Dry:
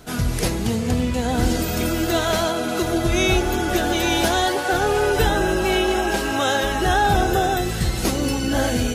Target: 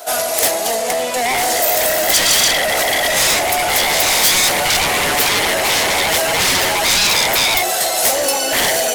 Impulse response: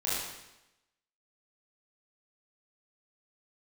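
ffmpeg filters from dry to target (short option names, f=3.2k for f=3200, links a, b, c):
-af "highpass=f=650:t=q:w=6.9,aeval=exprs='0.668*sin(PI/2*5.01*val(0)/0.668)':c=same,crystalizer=i=2.5:c=0,volume=-12dB"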